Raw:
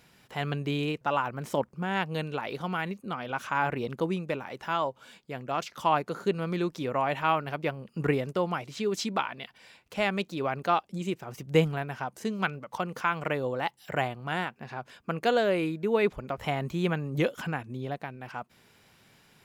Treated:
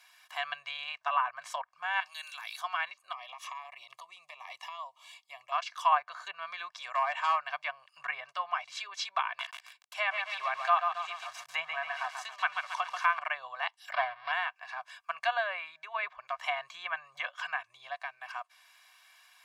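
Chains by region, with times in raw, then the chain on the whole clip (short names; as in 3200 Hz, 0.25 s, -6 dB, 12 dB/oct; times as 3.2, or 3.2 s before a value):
2–2.61 pre-emphasis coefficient 0.97 + notch 2900 Hz, Q 21 + fast leveller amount 70%
3.12–5.52 bell 1500 Hz +8 dB 0.2 oct + compressor 10:1, threshold -34 dBFS + Butterworth band-stop 1500 Hz, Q 2.1
6.82–7.48 overloaded stage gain 20.5 dB + bell 7600 Hz +13.5 dB 0.47 oct
9.25–13.19 gate -54 dBFS, range -30 dB + lo-fi delay 0.137 s, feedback 55%, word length 7-bit, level -5 dB
13.92–14.32 half-waves squared off + air absorption 290 m + careless resampling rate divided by 4×, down none, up filtered
whole clip: treble ducked by the level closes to 2300 Hz, closed at -23.5 dBFS; elliptic high-pass 750 Hz, stop band 40 dB; comb 1.8 ms, depth 86%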